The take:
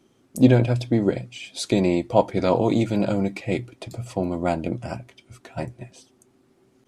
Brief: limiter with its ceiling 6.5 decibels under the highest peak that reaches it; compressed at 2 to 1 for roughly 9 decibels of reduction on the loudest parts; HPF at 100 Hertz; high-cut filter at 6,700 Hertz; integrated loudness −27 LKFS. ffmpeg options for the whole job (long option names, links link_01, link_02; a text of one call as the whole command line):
ffmpeg -i in.wav -af "highpass=100,lowpass=6700,acompressor=threshold=-27dB:ratio=2,volume=4.5dB,alimiter=limit=-14dB:level=0:latency=1" out.wav